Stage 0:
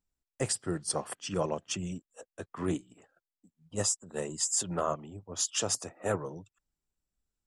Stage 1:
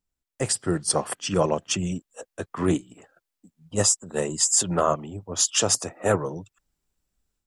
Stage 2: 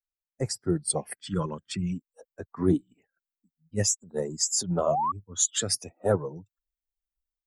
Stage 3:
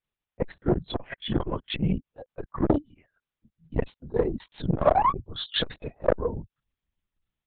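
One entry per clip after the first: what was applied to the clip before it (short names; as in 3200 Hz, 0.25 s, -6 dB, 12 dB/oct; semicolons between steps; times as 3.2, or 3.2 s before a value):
AGC gain up to 8 dB; gain +1 dB
per-bin expansion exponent 1.5; phaser stages 8, 0.51 Hz, lowest notch 680–3100 Hz; painted sound rise, 4.86–5.12, 560–1200 Hz -26 dBFS
in parallel at -10 dB: hard clip -26 dBFS, distortion -7 dB; on the sum: LPC vocoder at 8 kHz whisper; core saturation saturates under 490 Hz; gain +6 dB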